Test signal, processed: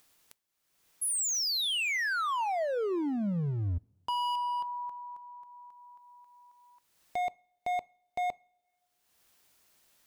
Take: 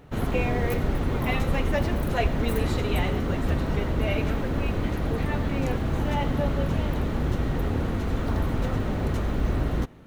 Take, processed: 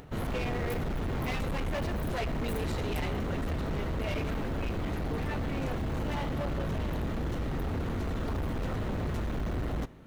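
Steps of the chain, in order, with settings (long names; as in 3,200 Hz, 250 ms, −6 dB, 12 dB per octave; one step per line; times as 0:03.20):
gain into a clipping stage and back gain 26 dB
upward compression, threshold −41 dBFS
coupled-rooms reverb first 0.37 s, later 2 s, from −21 dB, DRR 19.5 dB
level −3 dB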